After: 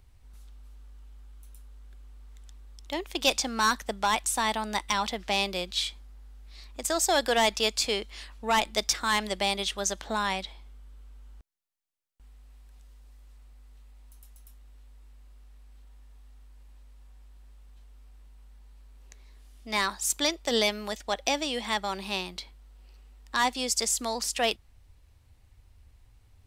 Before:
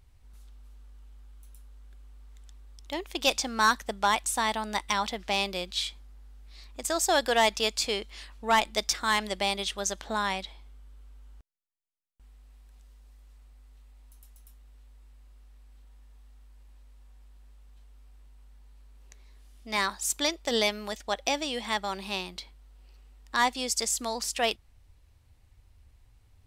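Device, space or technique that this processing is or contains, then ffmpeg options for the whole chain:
one-band saturation: -filter_complex "[0:a]acrossover=split=390|2700[s0][s1][s2];[s1]asoftclip=type=tanh:threshold=0.0944[s3];[s0][s3][s2]amix=inputs=3:normalize=0,volume=1.19"

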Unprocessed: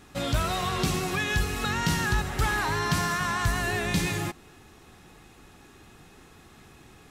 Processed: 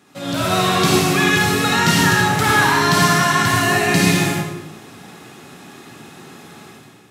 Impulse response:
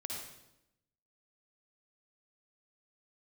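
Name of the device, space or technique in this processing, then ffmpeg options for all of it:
far laptop microphone: -filter_complex "[0:a]asettb=1/sr,asplit=3[s0][s1][s2];[s0]atrim=end=3.604[s3];[s1]atrim=start=3.6:end=4.02,asetpts=PTS-STARTPTS,afade=t=in:d=0.004:c=qsin,afade=t=out:st=0.416:d=0.004:c=qsin,bandreject=f=3500:w=8.2[s4];[s2]atrim=start=4.016[s5];[s3][s4]acrossfade=d=0.004:c1=hsin:c2=qsin[s6];[s6][s5]acrossfade=d=0.004:c1=qsin:c2=hsin[s7];[1:a]atrim=start_sample=2205[s8];[s7][s8]afir=irnorm=-1:irlink=0,highpass=f=130:w=0.5412,highpass=f=130:w=1.3066,dynaudnorm=f=130:g=7:m=3.35,volume=1.41"

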